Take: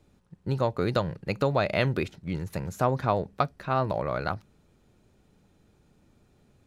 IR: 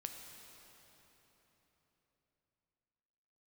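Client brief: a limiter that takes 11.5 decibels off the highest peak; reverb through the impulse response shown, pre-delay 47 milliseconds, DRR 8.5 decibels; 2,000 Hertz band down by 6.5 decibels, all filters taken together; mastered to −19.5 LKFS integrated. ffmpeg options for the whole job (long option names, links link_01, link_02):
-filter_complex "[0:a]equalizer=frequency=2000:width_type=o:gain=-9,alimiter=limit=-21.5dB:level=0:latency=1,asplit=2[link_01][link_02];[1:a]atrim=start_sample=2205,adelay=47[link_03];[link_02][link_03]afir=irnorm=-1:irlink=0,volume=-6dB[link_04];[link_01][link_04]amix=inputs=2:normalize=0,volume=13.5dB"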